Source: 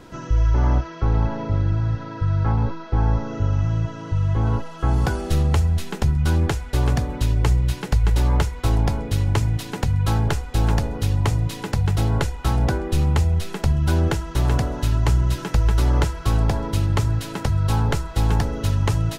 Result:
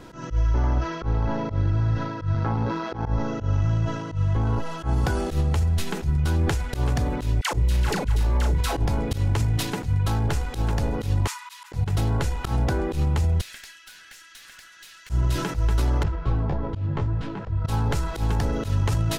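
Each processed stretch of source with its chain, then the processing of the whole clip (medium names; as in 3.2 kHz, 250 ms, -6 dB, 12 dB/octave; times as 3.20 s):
2.34–3.06 s: high-pass 120 Hz + AM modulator 120 Hz, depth 30% + level flattener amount 50%
7.41–8.86 s: doubling 36 ms -4 dB + phase dispersion lows, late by 122 ms, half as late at 640 Hz + three bands compressed up and down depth 40%
11.27–11.72 s: brick-wall FIR high-pass 850 Hz + slow attack 169 ms
13.41–15.10 s: Chebyshev high-pass 1.6 kHz, order 4 + valve stage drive 36 dB, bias 0.6 + compression 4:1, threshold -43 dBFS
16.03–17.65 s: tape spacing loss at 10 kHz 33 dB + detune thickener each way 25 cents
whole clip: slow attack 122 ms; peak limiter -15.5 dBFS; transient shaper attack +2 dB, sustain +6 dB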